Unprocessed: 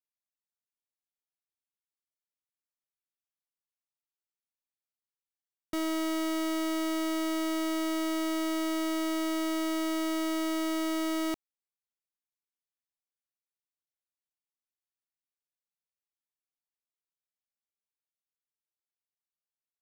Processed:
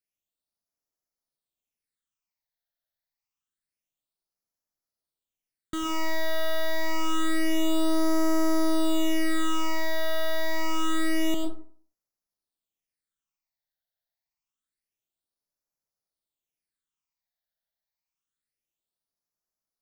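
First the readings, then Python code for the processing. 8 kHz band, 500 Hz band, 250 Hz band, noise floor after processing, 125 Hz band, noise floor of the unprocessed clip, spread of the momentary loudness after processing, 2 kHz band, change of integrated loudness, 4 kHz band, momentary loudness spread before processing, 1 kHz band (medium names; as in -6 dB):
+2.5 dB, +4.0 dB, +1.5 dB, under -85 dBFS, no reading, under -85 dBFS, 4 LU, +6.0 dB, +2.5 dB, +4.5 dB, 1 LU, +4.0 dB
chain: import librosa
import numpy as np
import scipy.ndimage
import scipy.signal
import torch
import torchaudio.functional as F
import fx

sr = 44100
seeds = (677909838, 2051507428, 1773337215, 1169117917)

y = fx.rev_freeverb(x, sr, rt60_s=0.48, hf_ratio=0.55, predelay_ms=65, drr_db=3.0)
y = fx.phaser_stages(y, sr, stages=8, low_hz=330.0, high_hz=3100.0, hz=0.27, feedback_pct=25)
y = y * librosa.db_to_amplitude(4.5)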